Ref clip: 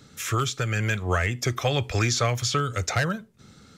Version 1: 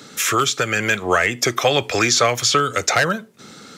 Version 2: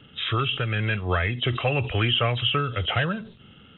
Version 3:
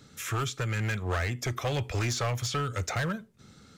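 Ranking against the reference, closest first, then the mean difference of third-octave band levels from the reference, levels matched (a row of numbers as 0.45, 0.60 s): 3, 1, 2; 2.0, 4.0, 7.0 dB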